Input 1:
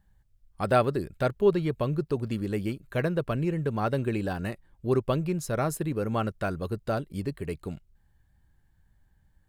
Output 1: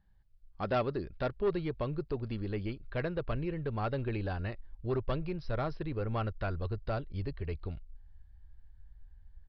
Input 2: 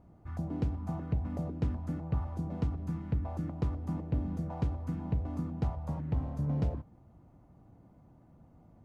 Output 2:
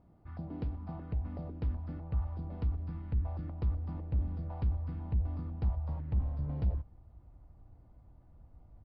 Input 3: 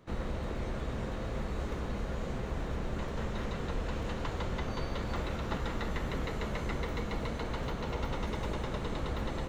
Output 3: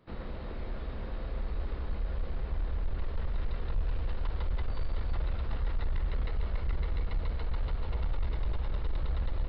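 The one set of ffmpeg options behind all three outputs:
-af "asubboost=boost=10:cutoff=58,aresample=11025,asoftclip=type=tanh:threshold=0.112,aresample=44100,volume=0.596"

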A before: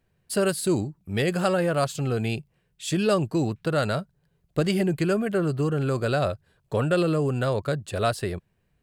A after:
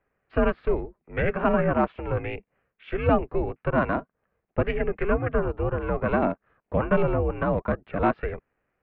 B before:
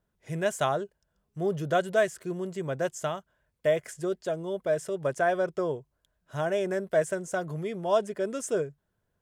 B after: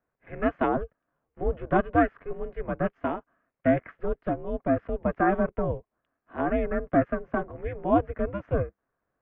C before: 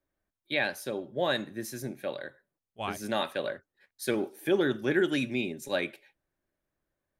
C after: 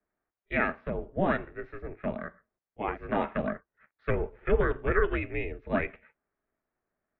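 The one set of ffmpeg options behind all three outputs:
-af "highpass=f=300:t=q:w=0.5412,highpass=f=300:t=q:w=1.307,lowpass=f=2400:t=q:w=0.5176,lowpass=f=2400:t=q:w=0.7071,lowpass=f=2400:t=q:w=1.932,afreqshift=-150,aeval=exprs='val(0)*sin(2*PI*200*n/s)':c=same,volume=1.88"

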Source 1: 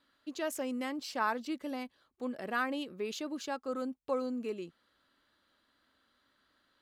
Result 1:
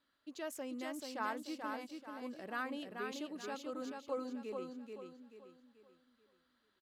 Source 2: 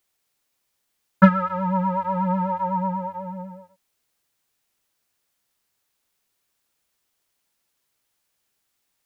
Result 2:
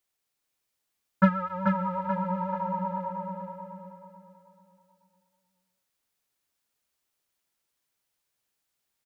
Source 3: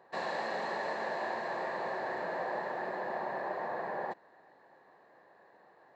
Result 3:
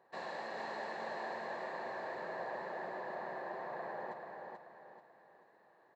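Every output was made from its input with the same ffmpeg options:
-af "aecho=1:1:435|870|1305|1740|2175:0.596|0.226|0.086|0.0327|0.0124,volume=0.422"

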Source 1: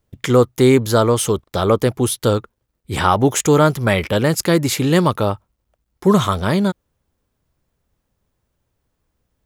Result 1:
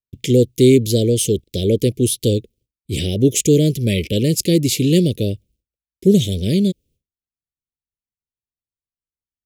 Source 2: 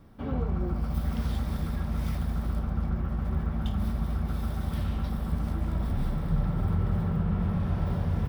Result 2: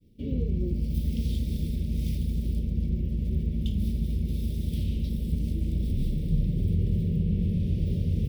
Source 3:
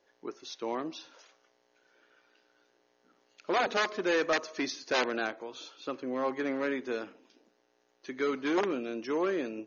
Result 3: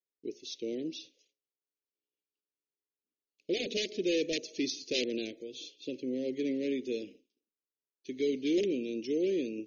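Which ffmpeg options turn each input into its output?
-af "agate=range=0.0224:threshold=0.00447:ratio=3:detection=peak,asuperstop=centerf=1100:order=8:qfactor=0.54,volume=1.19"

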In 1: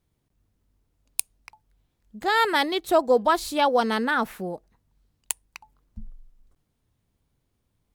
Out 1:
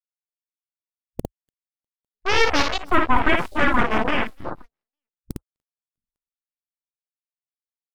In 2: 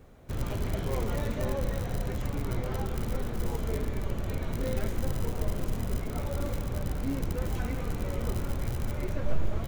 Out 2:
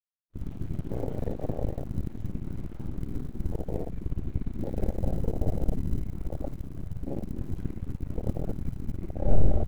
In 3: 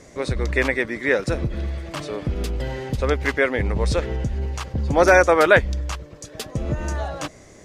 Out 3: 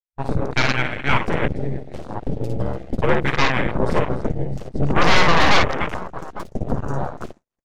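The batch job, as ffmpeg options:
-af "asoftclip=type=tanh:threshold=0.501,aecho=1:1:55|293|650|852:0.631|0.299|0.141|0.224,aeval=exprs='0.708*(cos(1*acos(clip(val(0)/0.708,-1,1)))-cos(1*PI/2))+0.251*(cos(3*acos(clip(val(0)/0.708,-1,1)))-cos(3*PI/2))+0.316*(cos(4*acos(clip(val(0)/0.708,-1,1)))-cos(4*PI/2))+0.00501*(cos(7*acos(clip(val(0)/0.708,-1,1)))-cos(7*PI/2))+0.251*(cos(8*acos(clip(val(0)/0.708,-1,1)))-cos(8*PI/2))':c=same,agate=range=0.0316:threshold=0.0282:ratio=16:detection=peak,afwtdn=0.0891,volume=0.562"

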